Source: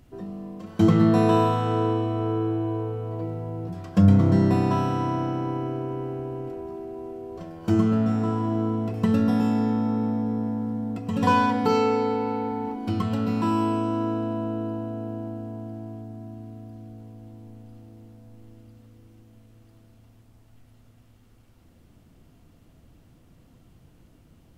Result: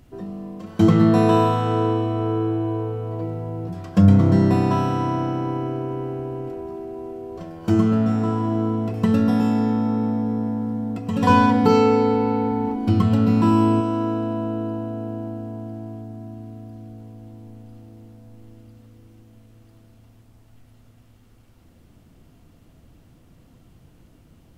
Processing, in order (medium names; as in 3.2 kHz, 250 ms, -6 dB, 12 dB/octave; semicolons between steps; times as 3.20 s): 11.29–13.81 s: bass shelf 310 Hz +7.5 dB; trim +3 dB